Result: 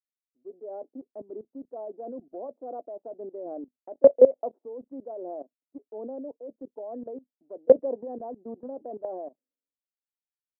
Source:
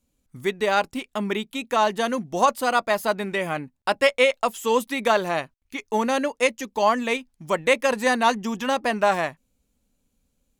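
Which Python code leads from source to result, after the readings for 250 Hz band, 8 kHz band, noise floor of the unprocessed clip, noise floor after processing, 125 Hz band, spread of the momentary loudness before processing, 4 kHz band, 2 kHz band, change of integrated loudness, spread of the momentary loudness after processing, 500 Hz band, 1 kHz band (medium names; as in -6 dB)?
-10.5 dB, under -40 dB, -73 dBFS, under -85 dBFS, under -15 dB, 8 LU, under -40 dB, under -40 dB, -3.0 dB, 22 LU, -2.0 dB, -20.0 dB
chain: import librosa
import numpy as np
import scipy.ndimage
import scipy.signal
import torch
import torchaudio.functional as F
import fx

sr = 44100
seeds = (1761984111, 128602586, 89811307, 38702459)

y = scipy.signal.sosfilt(scipy.signal.ellip(3, 1.0, 70, [270.0, 670.0], 'bandpass', fs=sr, output='sos'), x)
y = fx.level_steps(y, sr, step_db=18)
y = fx.band_widen(y, sr, depth_pct=100)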